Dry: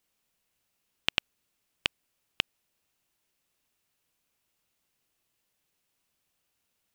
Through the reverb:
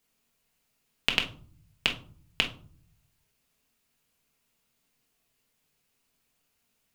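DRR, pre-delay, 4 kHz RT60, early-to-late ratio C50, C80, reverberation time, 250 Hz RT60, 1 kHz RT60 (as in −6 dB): 1.0 dB, 4 ms, 0.25 s, 11.5 dB, 17.5 dB, 0.45 s, 0.95 s, 0.45 s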